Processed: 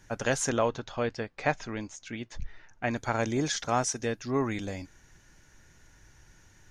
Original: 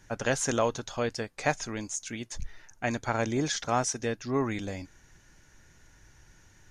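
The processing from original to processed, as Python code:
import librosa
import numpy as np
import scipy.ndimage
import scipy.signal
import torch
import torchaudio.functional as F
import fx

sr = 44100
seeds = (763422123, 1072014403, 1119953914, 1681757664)

y = fx.lowpass(x, sr, hz=3600.0, slope=12, at=(0.49, 2.96))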